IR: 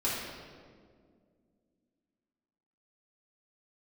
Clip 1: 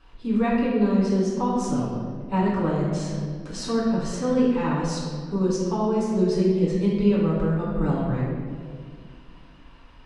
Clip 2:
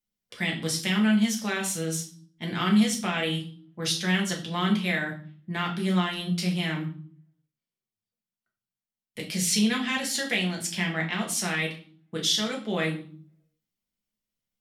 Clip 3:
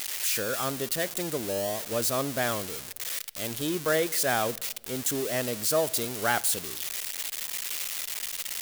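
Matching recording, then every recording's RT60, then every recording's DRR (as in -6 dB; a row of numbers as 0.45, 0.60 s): 1; 2.0 s, 0.50 s, not exponential; -9.0, -1.0, 20.0 dB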